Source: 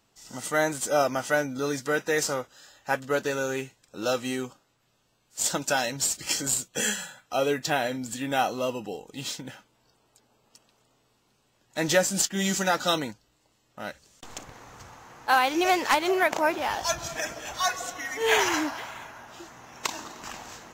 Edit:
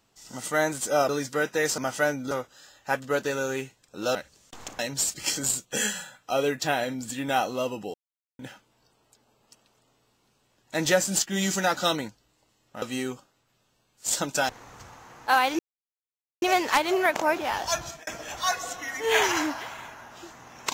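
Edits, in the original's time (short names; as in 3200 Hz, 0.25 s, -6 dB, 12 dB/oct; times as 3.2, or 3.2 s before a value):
1.09–1.62 move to 2.31
4.15–5.82 swap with 13.85–14.49
8.97–9.42 mute
15.59 insert silence 0.83 s
16.97–17.24 fade out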